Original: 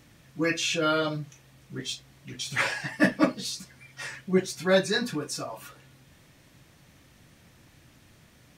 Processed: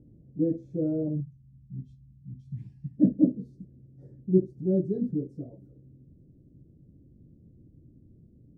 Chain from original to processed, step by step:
inverse Chebyshev low-pass filter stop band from 1,100 Hz, stop band 50 dB, from 0:01.20 stop band from 500 Hz, from 0:02.96 stop band from 990 Hz
level +3.5 dB

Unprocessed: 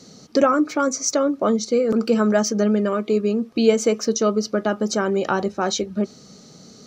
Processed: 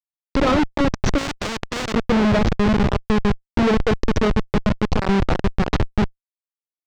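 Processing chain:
on a send: delay with a high-pass on its return 170 ms, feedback 63%, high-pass 1,800 Hz, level −8.5 dB
on the sum: comparator with hysteresis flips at −17 dBFS
high-frequency loss of the air 160 metres
0:01.18–0:01.94: every bin compressed towards the loudest bin 2 to 1
level +5.5 dB

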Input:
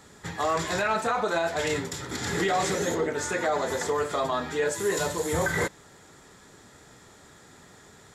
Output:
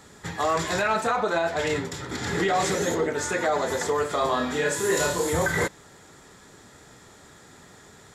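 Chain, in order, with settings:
0:01.16–0:02.56: high-shelf EQ 5,900 Hz −7.5 dB
0:04.18–0:05.30: flutter between parallel walls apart 4.8 metres, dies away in 0.44 s
level +2 dB

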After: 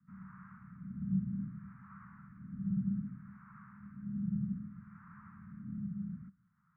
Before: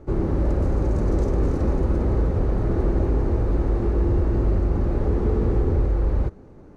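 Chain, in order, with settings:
LFO wah 0.63 Hz 320–1,100 Hz, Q 4.1
single-sideband voice off tune −140 Hz 290–2,200 Hz
Chebyshev band-stop filter 190–1,300 Hz, order 4
level +2.5 dB

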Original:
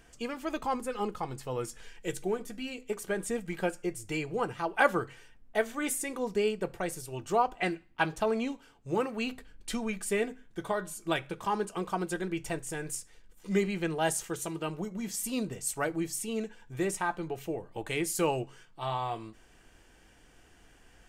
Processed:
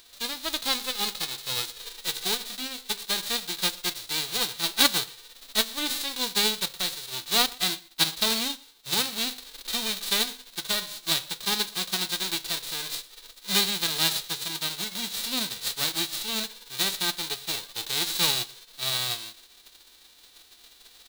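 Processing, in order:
spectral envelope flattened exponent 0.1
parametric band 3,900 Hz +14.5 dB 0.56 octaves
on a send: single-tap delay 118 ms −23 dB

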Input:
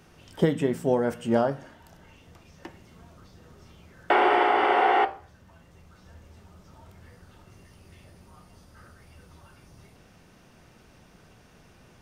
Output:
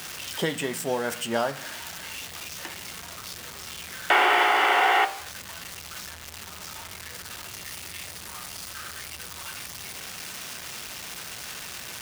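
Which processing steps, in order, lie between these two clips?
converter with a step at zero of −36.5 dBFS
high-pass filter 40 Hz
tilt shelving filter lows −9.5 dB, about 920 Hz

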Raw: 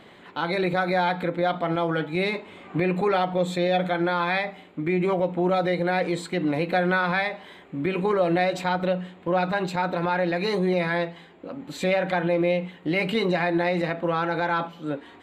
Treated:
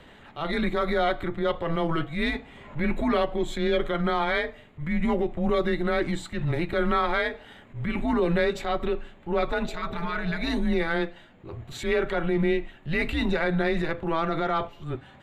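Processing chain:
transient designer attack −8 dB, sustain −3 dB
healed spectral selection 0:09.70–0:10.48, 450–1,000 Hz before
frequency shifter −160 Hz

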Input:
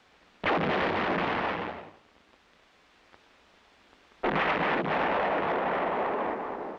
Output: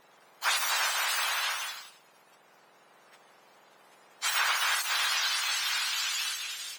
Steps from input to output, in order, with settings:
frequency axis turned over on the octave scale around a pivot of 1,700 Hz
0:01.43–0:01.83: surface crackle 340 per second −64 dBFS
level +4 dB

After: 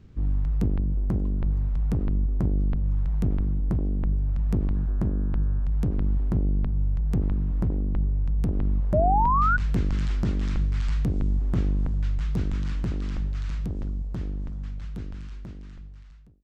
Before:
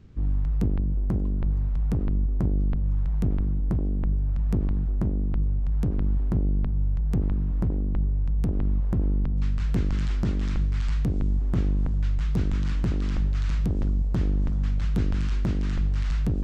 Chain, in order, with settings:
fade-out on the ending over 4.96 s
0:04.74–0:05.64: hum with harmonics 120 Hz, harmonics 14, −58 dBFS 0 dB per octave
0:08.93–0:09.57: sound drawn into the spectrogram rise 590–1,500 Hz −22 dBFS

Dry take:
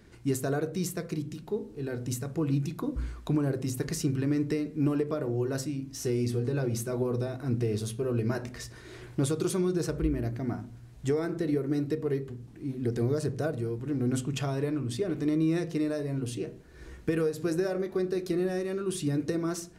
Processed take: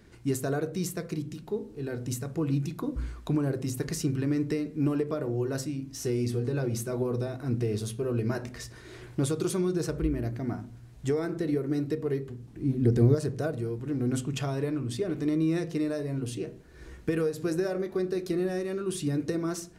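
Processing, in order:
0:12.56–0:13.15: low-shelf EQ 370 Hz +9.5 dB

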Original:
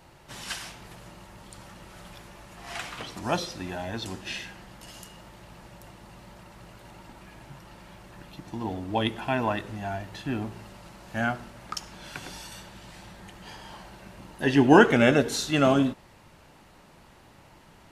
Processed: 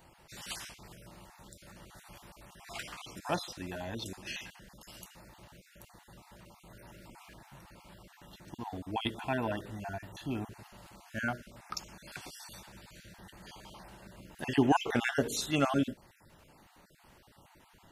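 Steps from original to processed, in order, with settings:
time-frequency cells dropped at random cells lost 28%
high-shelf EQ 12,000 Hz +11 dB
0:06.70–0:07.34: envelope flattener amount 50%
level −5.5 dB

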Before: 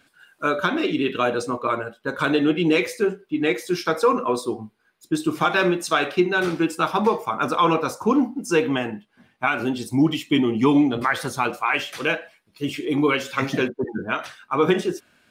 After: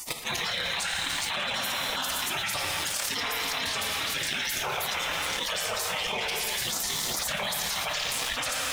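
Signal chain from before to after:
parametric band 3,100 Hz +5 dB 2.3 octaves
volume swells 247 ms
feedback echo with a band-pass in the loop 725 ms, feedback 44%, band-pass 2,200 Hz, level −10 dB
time stretch by overlap-add 0.57×, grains 55 ms
gate on every frequency bin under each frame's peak −25 dB weak
reverb whose tail is shaped and stops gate 460 ms falling, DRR 5 dB
leveller curve on the samples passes 2
envelope flattener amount 100%

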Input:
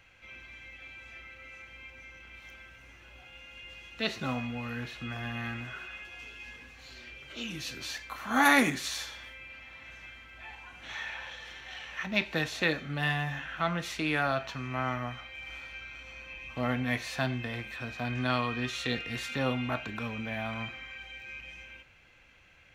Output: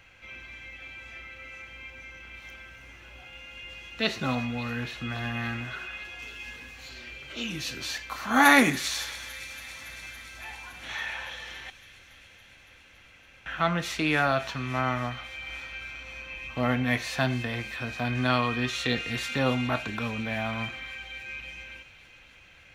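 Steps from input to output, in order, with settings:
0:06.22–0:06.89: high-shelf EQ 7,900 Hz +7.5 dB
0:11.70–0:13.46: fill with room tone
delay with a high-pass on its return 281 ms, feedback 80%, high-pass 3,100 Hz, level −14 dB
level +4.5 dB

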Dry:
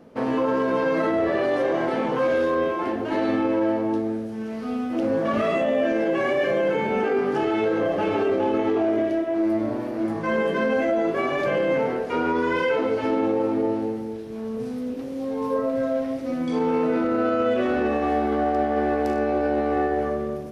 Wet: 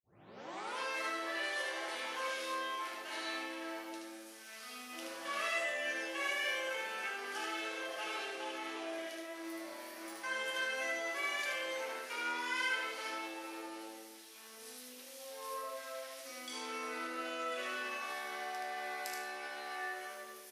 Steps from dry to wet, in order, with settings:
turntable start at the beginning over 0.78 s
high-pass filter 850 Hz 6 dB per octave
first difference
single-tap delay 76 ms −3.5 dB
convolution reverb RT60 0.85 s, pre-delay 4 ms, DRR 5 dB
level +3.5 dB

